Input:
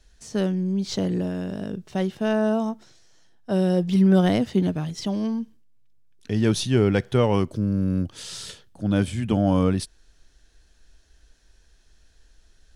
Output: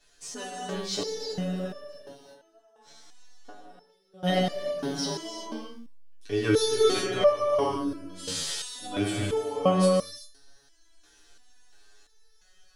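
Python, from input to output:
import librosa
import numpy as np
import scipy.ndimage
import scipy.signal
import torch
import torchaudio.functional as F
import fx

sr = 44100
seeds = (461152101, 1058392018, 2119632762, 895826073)

y = fx.gate_flip(x, sr, shuts_db=-27.0, range_db=-28, at=(1.77, 4.23))
y = fx.bass_treble(y, sr, bass_db=-14, treble_db=1)
y = y + 0.9 * np.pad(y, (int(7.0 * sr / 1000.0), 0))[:len(y)]
y = fx.rev_gated(y, sr, seeds[0], gate_ms=420, shape='flat', drr_db=-2.0)
y = fx.resonator_held(y, sr, hz=2.9, low_hz=78.0, high_hz=590.0)
y = F.gain(torch.from_numpy(y), 7.5).numpy()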